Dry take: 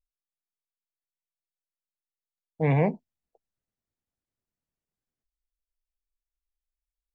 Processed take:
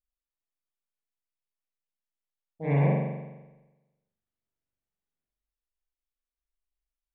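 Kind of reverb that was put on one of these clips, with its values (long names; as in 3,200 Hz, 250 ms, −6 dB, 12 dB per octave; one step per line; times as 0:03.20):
spring reverb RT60 1.1 s, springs 42 ms, chirp 40 ms, DRR −8 dB
level −11 dB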